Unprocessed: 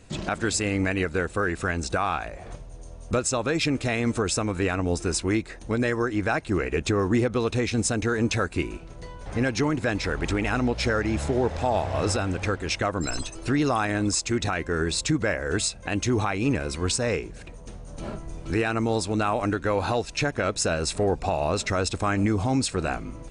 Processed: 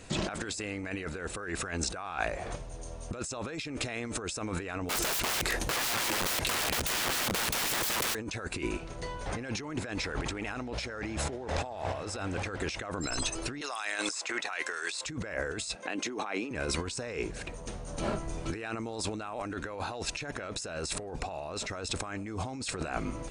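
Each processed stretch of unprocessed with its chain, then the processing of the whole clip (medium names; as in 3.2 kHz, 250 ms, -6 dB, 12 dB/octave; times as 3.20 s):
4.89–8.15 s: CVSD coder 64 kbps + integer overflow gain 29 dB + level flattener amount 100%
13.61–15.06 s: high-pass 770 Hz + three bands compressed up and down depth 100%
15.75–16.51 s: high-pass 220 Hz 24 dB/octave + treble shelf 8.5 kHz -10.5 dB
whole clip: bass shelf 290 Hz -7 dB; compressor with a negative ratio -35 dBFS, ratio -1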